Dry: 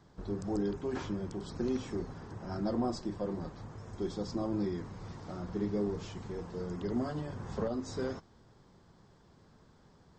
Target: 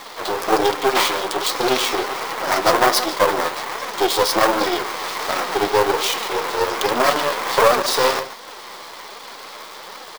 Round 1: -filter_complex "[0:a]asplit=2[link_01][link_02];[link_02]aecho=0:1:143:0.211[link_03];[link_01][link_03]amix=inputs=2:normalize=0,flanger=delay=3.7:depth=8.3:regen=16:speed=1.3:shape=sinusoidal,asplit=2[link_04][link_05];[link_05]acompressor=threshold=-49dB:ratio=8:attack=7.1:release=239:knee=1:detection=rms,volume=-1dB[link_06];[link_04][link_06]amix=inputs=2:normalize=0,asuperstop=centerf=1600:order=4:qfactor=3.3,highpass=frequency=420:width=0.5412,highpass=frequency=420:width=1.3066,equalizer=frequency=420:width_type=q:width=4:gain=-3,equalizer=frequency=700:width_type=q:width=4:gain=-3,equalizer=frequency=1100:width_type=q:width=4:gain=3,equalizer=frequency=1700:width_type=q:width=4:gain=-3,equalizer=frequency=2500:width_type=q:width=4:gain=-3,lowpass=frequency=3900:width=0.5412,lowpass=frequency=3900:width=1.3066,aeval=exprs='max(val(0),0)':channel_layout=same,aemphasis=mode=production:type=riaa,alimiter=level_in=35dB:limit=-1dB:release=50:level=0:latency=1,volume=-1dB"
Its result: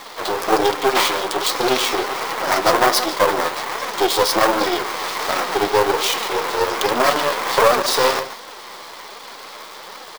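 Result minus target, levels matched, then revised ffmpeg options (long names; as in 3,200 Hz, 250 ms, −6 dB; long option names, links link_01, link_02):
downward compressor: peak gain reduction −7 dB
-filter_complex "[0:a]asplit=2[link_01][link_02];[link_02]aecho=0:1:143:0.211[link_03];[link_01][link_03]amix=inputs=2:normalize=0,flanger=delay=3.7:depth=8.3:regen=16:speed=1.3:shape=sinusoidal,asplit=2[link_04][link_05];[link_05]acompressor=threshold=-57dB:ratio=8:attack=7.1:release=239:knee=1:detection=rms,volume=-1dB[link_06];[link_04][link_06]amix=inputs=2:normalize=0,asuperstop=centerf=1600:order=4:qfactor=3.3,highpass=frequency=420:width=0.5412,highpass=frequency=420:width=1.3066,equalizer=frequency=420:width_type=q:width=4:gain=-3,equalizer=frequency=700:width_type=q:width=4:gain=-3,equalizer=frequency=1100:width_type=q:width=4:gain=3,equalizer=frequency=1700:width_type=q:width=4:gain=-3,equalizer=frequency=2500:width_type=q:width=4:gain=-3,lowpass=frequency=3900:width=0.5412,lowpass=frequency=3900:width=1.3066,aeval=exprs='max(val(0),0)':channel_layout=same,aemphasis=mode=production:type=riaa,alimiter=level_in=35dB:limit=-1dB:release=50:level=0:latency=1,volume=-1dB"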